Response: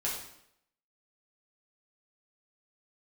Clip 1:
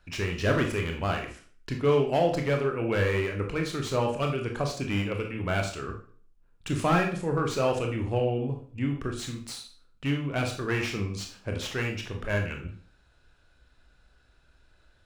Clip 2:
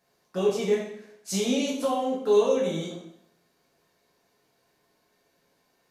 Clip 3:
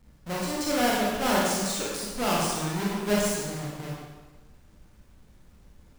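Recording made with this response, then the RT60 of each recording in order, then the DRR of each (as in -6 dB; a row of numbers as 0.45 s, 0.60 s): 2; 0.45 s, 0.75 s, 1.3 s; 2.5 dB, -5.5 dB, -5.5 dB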